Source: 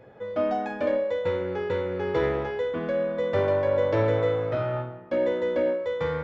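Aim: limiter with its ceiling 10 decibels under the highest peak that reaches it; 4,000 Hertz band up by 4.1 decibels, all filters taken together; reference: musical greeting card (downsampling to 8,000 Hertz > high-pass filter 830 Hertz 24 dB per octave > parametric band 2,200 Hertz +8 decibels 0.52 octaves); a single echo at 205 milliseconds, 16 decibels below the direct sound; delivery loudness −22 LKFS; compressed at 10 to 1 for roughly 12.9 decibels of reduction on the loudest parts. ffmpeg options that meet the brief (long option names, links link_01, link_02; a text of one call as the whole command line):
ffmpeg -i in.wav -af "equalizer=frequency=4000:width_type=o:gain=3.5,acompressor=threshold=-33dB:ratio=10,alimiter=level_in=9dB:limit=-24dB:level=0:latency=1,volume=-9dB,aecho=1:1:205:0.158,aresample=8000,aresample=44100,highpass=frequency=830:width=0.5412,highpass=frequency=830:width=1.3066,equalizer=frequency=2200:width_type=o:width=0.52:gain=8,volume=25.5dB" out.wav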